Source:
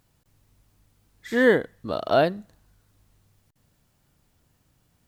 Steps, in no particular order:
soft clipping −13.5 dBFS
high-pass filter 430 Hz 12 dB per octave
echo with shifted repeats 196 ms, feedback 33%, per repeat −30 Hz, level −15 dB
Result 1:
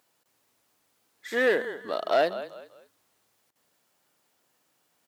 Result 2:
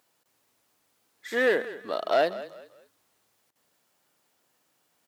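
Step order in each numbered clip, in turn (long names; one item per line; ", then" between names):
echo with shifted repeats, then soft clipping, then high-pass filter
soft clipping, then echo with shifted repeats, then high-pass filter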